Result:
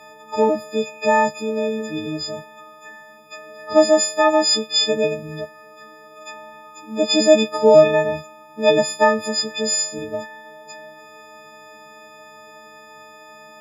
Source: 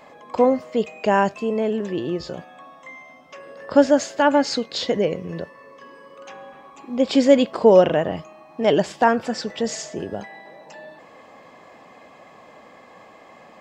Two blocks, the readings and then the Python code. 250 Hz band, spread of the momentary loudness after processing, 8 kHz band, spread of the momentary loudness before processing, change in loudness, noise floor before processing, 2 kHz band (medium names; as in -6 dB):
-2.0 dB, 18 LU, +11.0 dB, 18 LU, +2.0 dB, -48 dBFS, +3.5 dB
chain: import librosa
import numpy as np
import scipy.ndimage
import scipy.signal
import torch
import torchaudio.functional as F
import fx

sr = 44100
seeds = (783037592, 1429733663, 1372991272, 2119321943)

y = fx.freq_snap(x, sr, grid_st=6)
y = fx.dynamic_eq(y, sr, hz=570.0, q=2.6, threshold_db=-31.0, ratio=4.0, max_db=4)
y = y * 10.0 ** (-2.0 / 20.0)